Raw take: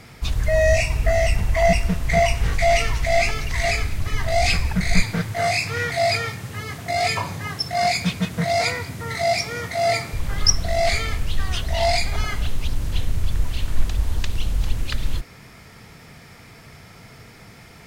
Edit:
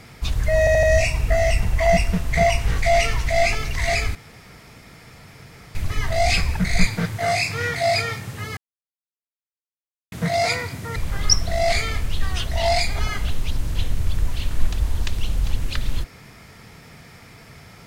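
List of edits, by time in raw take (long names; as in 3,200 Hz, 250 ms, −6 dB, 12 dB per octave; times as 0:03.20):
0:00.59: stutter 0.08 s, 4 plays
0:03.91: splice in room tone 1.60 s
0:06.73–0:08.28: silence
0:09.12–0:10.13: remove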